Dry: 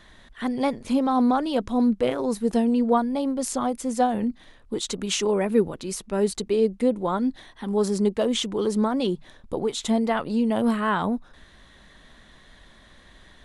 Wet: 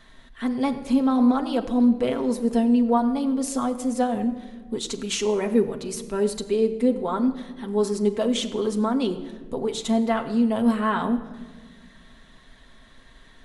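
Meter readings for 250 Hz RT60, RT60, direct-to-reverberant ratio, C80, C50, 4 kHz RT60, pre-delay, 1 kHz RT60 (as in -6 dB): 2.2 s, 1.4 s, 3.5 dB, 12.5 dB, 12.0 dB, 0.90 s, 4 ms, 1.1 s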